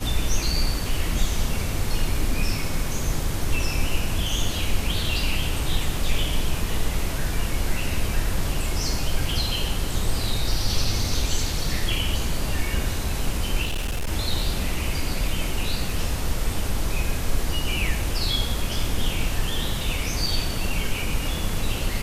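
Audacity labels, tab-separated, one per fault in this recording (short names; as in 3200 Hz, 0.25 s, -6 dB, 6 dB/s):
13.640000	14.110000	clipped -22 dBFS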